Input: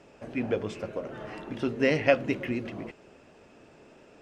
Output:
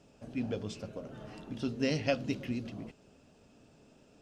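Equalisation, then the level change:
octave-band graphic EQ 500/1,000/2,000 Hz −6/−6/−11 dB
dynamic equaliser 4,700 Hz, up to +7 dB, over −58 dBFS, Q 1.3
parametric band 350 Hz −8 dB 0.21 octaves
−1.5 dB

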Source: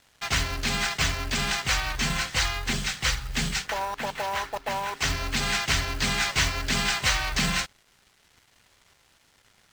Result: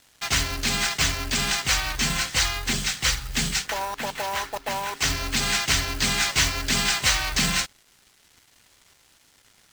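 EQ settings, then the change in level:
parametric band 290 Hz +3.5 dB 0.63 octaves
high-shelf EQ 4,400 Hz +8 dB
0.0 dB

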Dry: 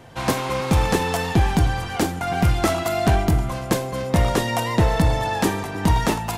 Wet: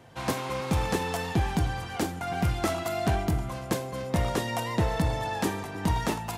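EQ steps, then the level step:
high-pass filter 51 Hz
−7.5 dB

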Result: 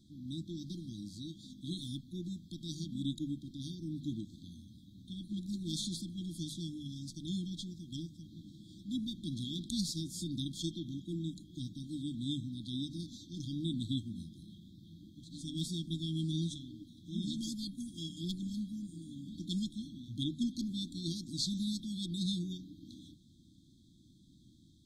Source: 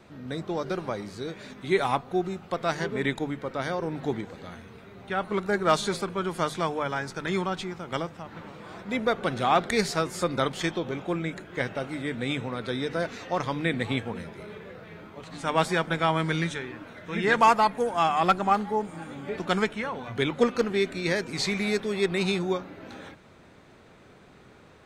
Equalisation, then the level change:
linear-phase brick-wall band-stop 340–3,200 Hz
−5.5 dB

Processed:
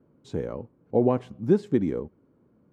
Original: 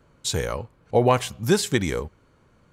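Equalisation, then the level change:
resonant band-pass 270 Hz, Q 1.5
+3.0 dB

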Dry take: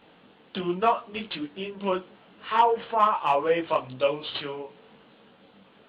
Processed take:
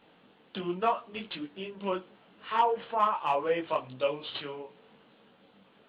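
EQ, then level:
parametric band 65 Hz −4 dB
−5.0 dB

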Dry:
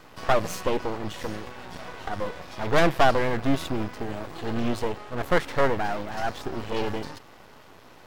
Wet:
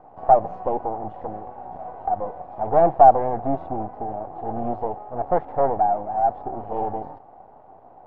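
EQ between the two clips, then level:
low-pass with resonance 760 Hz, resonance Q 7.7
−4.0 dB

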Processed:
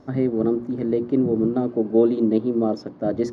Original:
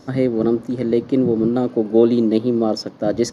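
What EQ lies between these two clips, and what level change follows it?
low-pass filter 1,100 Hz 6 dB per octave
mains-hum notches 60/120/180/240/300/360 Hz
notch filter 510 Hz, Q 13
−2.0 dB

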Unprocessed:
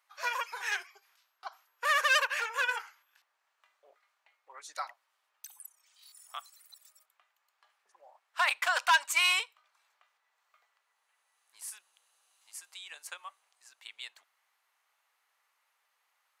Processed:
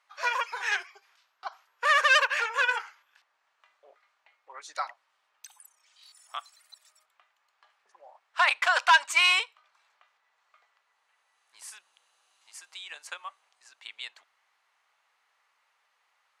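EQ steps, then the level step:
high-frequency loss of the air 62 metres
+5.5 dB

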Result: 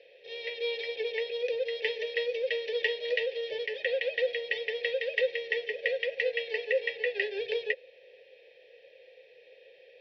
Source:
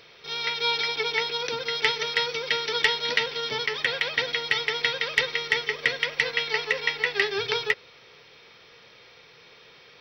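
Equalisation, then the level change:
formant filter e
low-pass filter 4,700 Hz 12 dB per octave
phaser with its sweep stopped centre 550 Hz, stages 4
+8.5 dB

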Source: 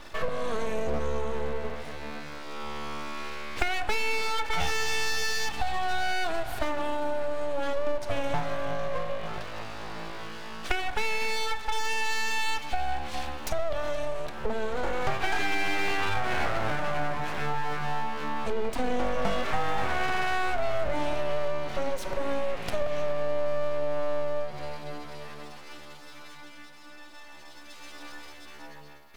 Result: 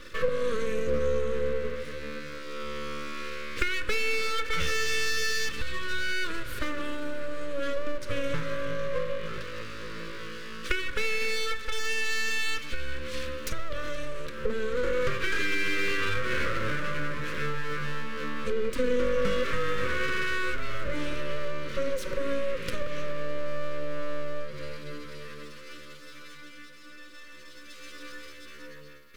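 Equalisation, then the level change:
Butterworth band-reject 760 Hz, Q 1
parametric band 520 Hz +13 dB 0.24 octaves
parametric band 1,200 Hz +2.5 dB 1.7 octaves
0.0 dB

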